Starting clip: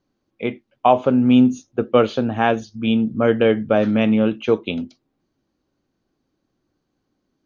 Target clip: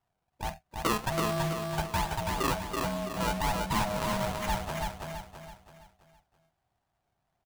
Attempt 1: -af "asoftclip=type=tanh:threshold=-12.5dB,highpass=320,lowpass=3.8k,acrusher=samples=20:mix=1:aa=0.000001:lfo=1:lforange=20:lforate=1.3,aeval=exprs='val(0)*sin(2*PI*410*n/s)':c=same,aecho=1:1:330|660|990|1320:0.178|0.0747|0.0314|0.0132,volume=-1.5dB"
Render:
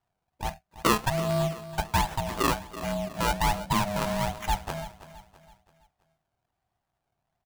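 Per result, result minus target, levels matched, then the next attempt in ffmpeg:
echo-to-direct -11.5 dB; soft clip: distortion -6 dB
-af "asoftclip=type=tanh:threshold=-12.5dB,highpass=320,lowpass=3.8k,acrusher=samples=20:mix=1:aa=0.000001:lfo=1:lforange=20:lforate=1.3,aeval=exprs='val(0)*sin(2*PI*410*n/s)':c=same,aecho=1:1:330|660|990|1320|1650:0.668|0.281|0.118|0.0495|0.0208,volume=-1.5dB"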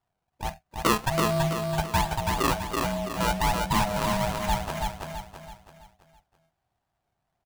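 soft clip: distortion -6 dB
-af "asoftclip=type=tanh:threshold=-20.5dB,highpass=320,lowpass=3.8k,acrusher=samples=20:mix=1:aa=0.000001:lfo=1:lforange=20:lforate=1.3,aeval=exprs='val(0)*sin(2*PI*410*n/s)':c=same,aecho=1:1:330|660|990|1320|1650:0.668|0.281|0.118|0.0495|0.0208,volume=-1.5dB"

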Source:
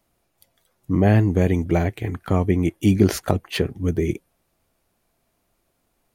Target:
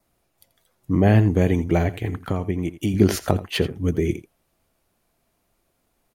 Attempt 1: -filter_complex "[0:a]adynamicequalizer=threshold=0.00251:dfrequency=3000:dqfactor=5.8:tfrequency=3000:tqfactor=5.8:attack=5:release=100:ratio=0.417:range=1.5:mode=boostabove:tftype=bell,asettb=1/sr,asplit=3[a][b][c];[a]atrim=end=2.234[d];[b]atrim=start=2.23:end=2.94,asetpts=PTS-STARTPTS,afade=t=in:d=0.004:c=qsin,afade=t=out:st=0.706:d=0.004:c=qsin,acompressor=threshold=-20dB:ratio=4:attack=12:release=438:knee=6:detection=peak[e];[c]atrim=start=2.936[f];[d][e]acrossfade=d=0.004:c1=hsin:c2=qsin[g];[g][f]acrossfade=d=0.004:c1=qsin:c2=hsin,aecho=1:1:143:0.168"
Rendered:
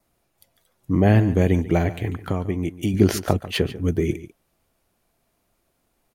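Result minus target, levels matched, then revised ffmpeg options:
echo 59 ms late
-filter_complex "[0:a]adynamicequalizer=threshold=0.00251:dfrequency=3000:dqfactor=5.8:tfrequency=3000:tqfactor=5.8:attack=5:release=100:ratio=0.417:range=1.5:mode=boostabove:tftype=bell,asettb=1/sr,asplit=3[a][b][c];[a]atrim=end=2.234[d];[b]atrim=start=2.23:end=2.94,asetpts=PTS-STARTPTS,afade=t=in:d=0.004:c=qsin,afade=t=out:st=0.706:d=0.004:c=qsin,acompressor=threshold=-20dB:ratio=4:attack=12:release=438:knee=6:detection=peak[e];[c]atrim=start=2.936[f];[d][e]acrossfade=d=0.004:c1=hsin:c2=qsin[g];[g][f]acrossfade=d=0.004:c1=qsin:c2=hsin,aecho=1:1:84:0.168"

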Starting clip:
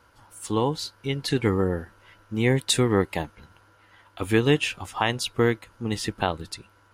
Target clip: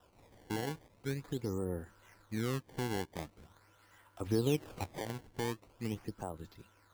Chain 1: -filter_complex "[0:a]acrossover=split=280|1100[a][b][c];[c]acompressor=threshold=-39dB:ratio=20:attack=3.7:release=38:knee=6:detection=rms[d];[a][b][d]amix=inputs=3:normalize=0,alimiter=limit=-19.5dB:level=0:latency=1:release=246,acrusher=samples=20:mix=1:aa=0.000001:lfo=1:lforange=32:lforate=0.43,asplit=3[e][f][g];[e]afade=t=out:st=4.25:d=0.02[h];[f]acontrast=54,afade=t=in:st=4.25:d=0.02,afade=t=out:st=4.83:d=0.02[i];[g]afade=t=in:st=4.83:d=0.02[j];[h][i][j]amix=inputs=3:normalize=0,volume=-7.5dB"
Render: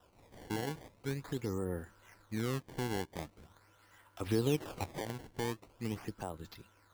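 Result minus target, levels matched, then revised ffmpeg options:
compressor: peak gain reduction -10.5 dB
-filter_complex "[0:a]acrossover=split=280|1100[a][b][c];[c]acompressor=threshold=-50dB:ratio=20:attack=3.7:release=38:knee=6:detection=rms[d];[a][b][d]amix=inputs=3:normalize=0,alimiter=limit=-19.5dB:level=0:latency=1:release=246,acrusher=samples=20:mix=1:aa=0.000001:lfo=1:lforange=32:lforate=0.43,asplit=3[e][f][g];[e]afade=t=out:st=4.25:d=0.02[h];[f]acontrast=54,afade=t=in:st=4.25:d=0.02,afade=t=out:st=4.83:d=0.02[i];[g]afade=t=in:st=4.83:d=0.02[j];[h][i][j]amix=inputs=3:normalize=0,volume=-7.5dB"

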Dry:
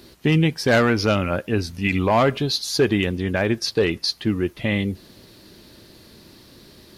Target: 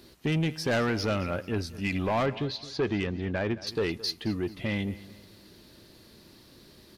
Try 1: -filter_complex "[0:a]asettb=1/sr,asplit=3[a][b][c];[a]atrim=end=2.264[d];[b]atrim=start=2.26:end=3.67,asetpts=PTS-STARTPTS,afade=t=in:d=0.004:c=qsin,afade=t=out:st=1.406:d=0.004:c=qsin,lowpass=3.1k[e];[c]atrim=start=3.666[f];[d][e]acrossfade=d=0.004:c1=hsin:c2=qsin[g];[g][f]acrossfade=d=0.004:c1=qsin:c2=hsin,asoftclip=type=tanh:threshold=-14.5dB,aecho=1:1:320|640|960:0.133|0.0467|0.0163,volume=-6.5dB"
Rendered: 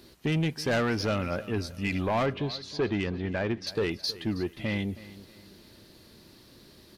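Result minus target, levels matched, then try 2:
echo 0.102 s late
-filter_complex "[0:a]asettb=1/sr,asplit=3[a][b][c];[a]atrim=end=2.264[d];[b]atrim=start=2.26:end=3.67,asetpts=PTS-STARTPTS,afade=t=in:d=0.004:c=qsin,afade=t=out:st=1.406:d=0.004:c=qsin,lowpass=3.1k[e];[c]atrim=start=3.666[f];[d][e]acrossfade=d=0.004:c1=hsin:c2=qsin[g];[g][f]acrossfade=d=0.004:c1=qsin:c2=hsin,asoftclip=type=tanh:threshold=-14.5dB,aecho=1:1:218|436|654:0.133|0.0467|0.0163,volume=-6.5dB"

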